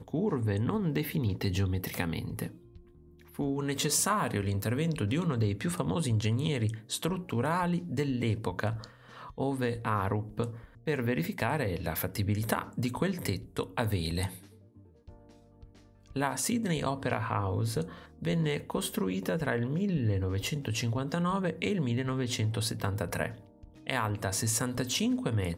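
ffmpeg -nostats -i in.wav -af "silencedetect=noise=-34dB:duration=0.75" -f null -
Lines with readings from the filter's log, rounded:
silence_start: 2.47
silence_end: 3.39 | silence_duration: 0.92
silence_start: 14.27
silence_end: 16.16 | silence_duration: 1.89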